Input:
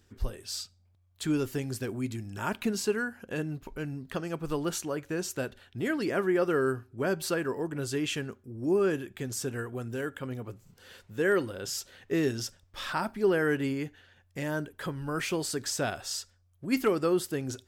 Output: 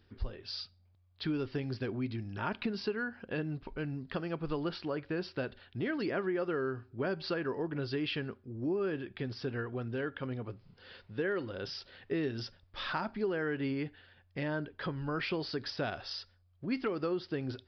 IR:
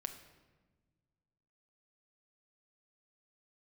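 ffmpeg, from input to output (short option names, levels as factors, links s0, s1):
-af "acompressor=threshold=0.0355:ratio=6,aresample=11025,aresample=44100,volume=0.891"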